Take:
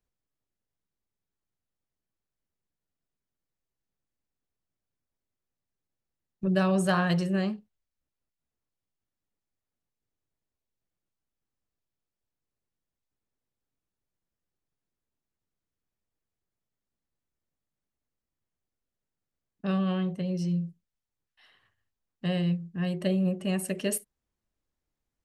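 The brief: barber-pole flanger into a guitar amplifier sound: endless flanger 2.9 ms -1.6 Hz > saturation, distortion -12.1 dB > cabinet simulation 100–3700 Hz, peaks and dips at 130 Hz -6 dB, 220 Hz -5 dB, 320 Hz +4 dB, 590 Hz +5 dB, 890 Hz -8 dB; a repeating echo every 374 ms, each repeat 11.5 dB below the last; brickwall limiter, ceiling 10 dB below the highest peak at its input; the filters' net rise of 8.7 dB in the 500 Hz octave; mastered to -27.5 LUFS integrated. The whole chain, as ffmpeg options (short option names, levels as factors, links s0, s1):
-filter_complex "[0:a]equalizer=f=500:t=o:g=7,alimiter=limit=0.0944:level=0:latency=1,aecho=1:1:374|748|1122:0.266|0.0718|0.0194,asplit=2[s0][s1];[s1]adelay=2.9,afreqshift=-1.6[s2];[s0][s2]amix=inputs=2:normalize=1,asoftclip=threshold=0.0376,highpass=100,equalizer=f=130:t=q:w=4:g=-6,equalizer=f=220:t=q:w=4:g=-5,equalizer=f=320:t=q:w=4:g=4,equalizer=f=590:t=q:w=4:g=5,equalizer=f=890:t=q:w=4:g=-8,lowpass=f=3700:w=0.5412,lowpass=f=3700:w=1.3066,volume=2.82"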